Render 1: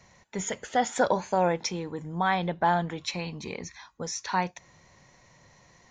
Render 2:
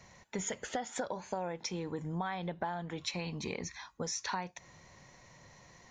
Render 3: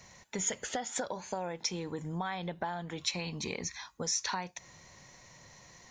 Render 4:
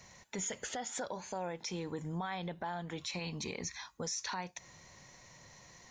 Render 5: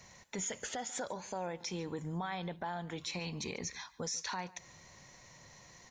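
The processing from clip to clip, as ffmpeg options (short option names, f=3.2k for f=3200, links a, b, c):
-af "acompressor=threshold=-33dB:ratio=16"
-af "highshelf=f=3.4k:g=8"
-af "alimiter=level_in=4dB:limit=-24dB:level=0:latency=1:release=24,volume=-4dB,volume=-1.5dB"
-af "aecho=1:1:143:0.0891"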